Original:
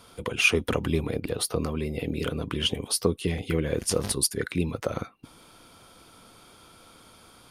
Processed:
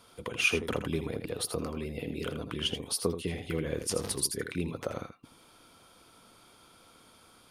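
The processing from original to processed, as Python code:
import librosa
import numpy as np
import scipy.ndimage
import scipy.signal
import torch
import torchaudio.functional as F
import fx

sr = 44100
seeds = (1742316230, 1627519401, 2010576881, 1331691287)

p1 = fx.low_shelf(x, sr, hz=130.0, db=-4.5)
p2 = p1 + fx.echo_single(p1, sr, ms=81, db=-9.5, dry=0)
y = p2 * librosa.db_to_amplitude(-5.5)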